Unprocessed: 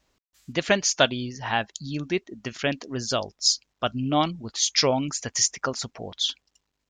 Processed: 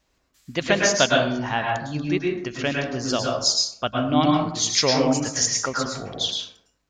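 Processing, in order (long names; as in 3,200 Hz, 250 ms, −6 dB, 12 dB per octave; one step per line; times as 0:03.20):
0:01.25–0:01.91: high-shelf EQ 6,600 Hz → 3,800 Hz −11.5 dB
dense smooth reverb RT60 0.72 s, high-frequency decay 0.45×, pre-delay 95 ms, DRR −1 dB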